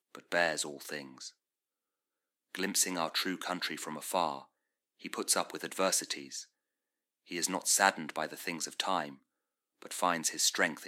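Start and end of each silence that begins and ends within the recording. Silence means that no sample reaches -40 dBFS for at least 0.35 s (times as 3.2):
1.28–2.55
4.42–5.05
6.42–7.31
9.12–9.82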